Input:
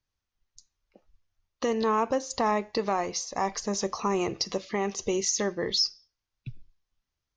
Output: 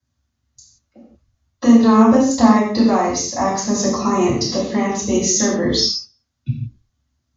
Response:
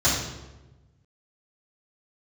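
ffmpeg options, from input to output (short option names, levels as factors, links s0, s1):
-filter_complex "[0:a]equalizer=f=230:w=3:g=11.5[s0];[1:a]atrim=start_sample=2205,afade=t=out:st=0.24:d=0.01,atrim=end_sample=11025[s1];[s0][s1]afir=irnorm=-1:irlink=0,volume=0.422"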